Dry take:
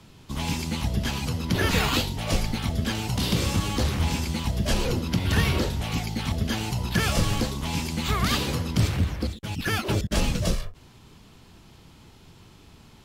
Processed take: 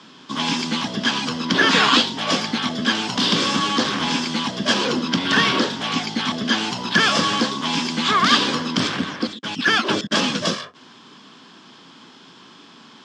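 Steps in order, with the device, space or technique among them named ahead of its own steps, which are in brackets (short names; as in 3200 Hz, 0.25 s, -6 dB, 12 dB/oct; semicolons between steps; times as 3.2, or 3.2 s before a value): television speaker (speaker cabinet 190–7300 Hz, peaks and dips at 260 Hz +6 dB, 1100 Hz +9 dB, 1600 Hz +9 dB, 3300 Hz +9 dB, 5100 Hz +6 dB); gain +4.5 dB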